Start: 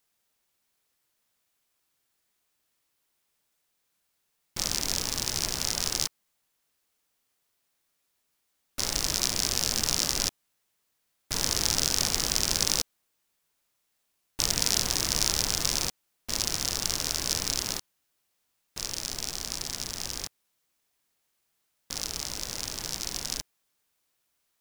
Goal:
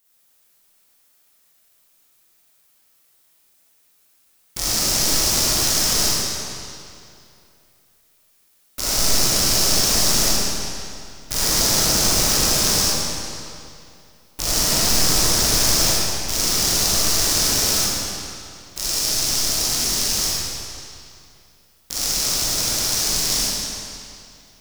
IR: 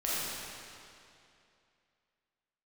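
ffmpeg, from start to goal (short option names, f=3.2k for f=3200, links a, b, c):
-filter_complex "[0:a]highshelf=f=8.1k:g=10.5,acrossover=split=1500[a][b];[b]alimiter=limit=-7.5dB:level=0:latency=1[c];[a][c]amix=inputs=2:normalize=0[d];[1:a]atrim=start_sample=2205[e];[d][e]afir=irnorm=-1:irlink=0,volume=3.5dB"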